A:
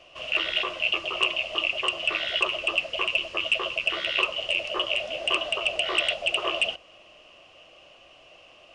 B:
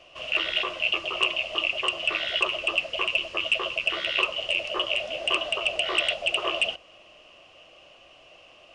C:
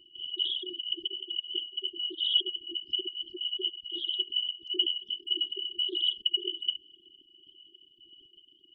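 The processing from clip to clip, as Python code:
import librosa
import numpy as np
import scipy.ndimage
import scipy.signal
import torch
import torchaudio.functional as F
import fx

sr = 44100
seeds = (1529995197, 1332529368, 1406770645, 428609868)

y1 = x
y2 = fx.envelope_sharpen(y1, sr, power=3.0)
y2 = fx.brickwall_bandstop(y2, sr, low_hz=400.0, high_hz=2900.0)
y2 = fx.notch_cascade(y2, sr, direction='rising', hz=1.5)
y2 = y2 * librosa.db_to_amplitude(5.5)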